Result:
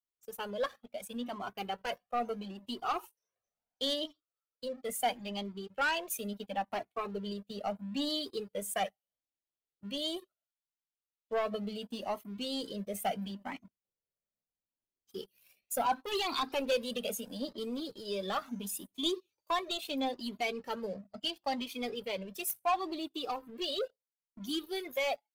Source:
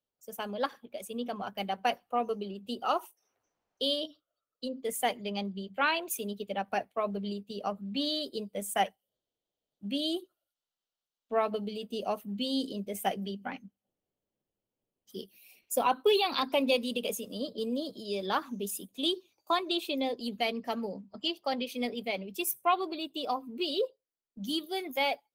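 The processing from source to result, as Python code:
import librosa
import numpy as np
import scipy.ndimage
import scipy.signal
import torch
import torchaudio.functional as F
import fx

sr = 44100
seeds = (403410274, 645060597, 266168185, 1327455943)

y = fx.leveller(x, sr, passes=2)
y = fx.comb_cascade(y, sr, direction='rising', hz=0.74)
y = F.gain(torch.from_numpy(y), -4.5).numpy()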